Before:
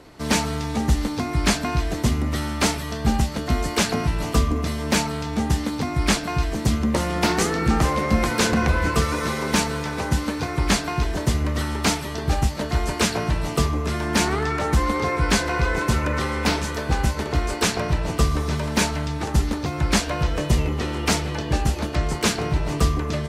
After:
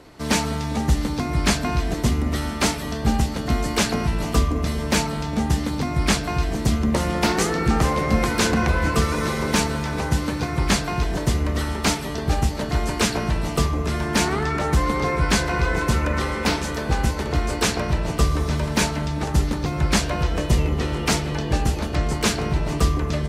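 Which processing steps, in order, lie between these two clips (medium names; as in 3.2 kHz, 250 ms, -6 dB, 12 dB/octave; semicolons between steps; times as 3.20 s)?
bucket-brigade echo 202 ms, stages 1024, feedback 84%, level -14 dB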